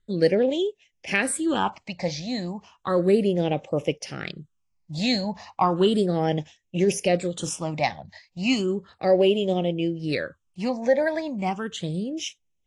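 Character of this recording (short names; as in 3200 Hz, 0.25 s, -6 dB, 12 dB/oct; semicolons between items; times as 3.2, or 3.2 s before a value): phasing stages 8, 0.34 Hz, lowest notch 380–1400 Hz; AAC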